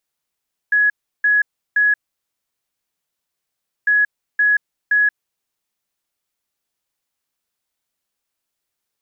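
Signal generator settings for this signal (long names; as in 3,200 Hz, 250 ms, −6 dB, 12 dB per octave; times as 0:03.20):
beeps in groups sine 1,680 Hz, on 0.18 s, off 0.34 s, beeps 3, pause 1.93 s, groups 2, −11.5 dBFS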